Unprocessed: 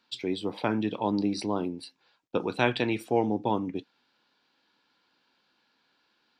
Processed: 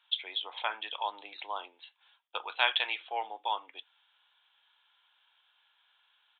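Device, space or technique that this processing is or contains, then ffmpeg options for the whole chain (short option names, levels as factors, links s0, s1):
musical greeting card: -af "aresample=8000,aresample=44100,highpass=f=790:w=0.5412,highpass=f=790:w=1.3066,equalizer=f=3300:t=o:w=0.4:g=9.5"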